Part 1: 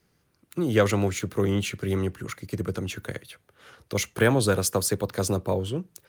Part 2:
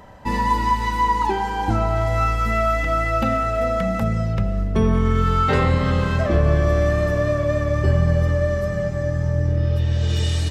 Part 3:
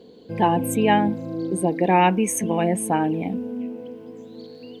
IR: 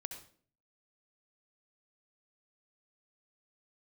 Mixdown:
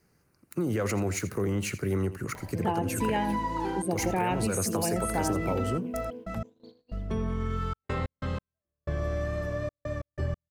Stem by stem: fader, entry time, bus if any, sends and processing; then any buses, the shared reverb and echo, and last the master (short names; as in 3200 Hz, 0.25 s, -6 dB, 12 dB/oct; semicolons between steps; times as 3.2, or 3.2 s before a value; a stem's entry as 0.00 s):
+1.0 dB, 0.00 s, no send, echo send -15 dB, bell 3400 Hz -14 dB 0.4 oct; limiter -20 dBFS, peak gain reduction 11 dB
-12.0 dB, 2.35 s, no send, no echo send, upward compressor, threshold -25 dBFS; step gate "x...xxxxx.x." 92 bpm -60 dB
-6.0 dB, 2.25 s, no send, echo send -17 dB, gate -37 dBFS, range -33 dB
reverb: off
echo: echo 83 ms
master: compressor 4:1, threshold -24 dBFS, peak gain reduction 7 dB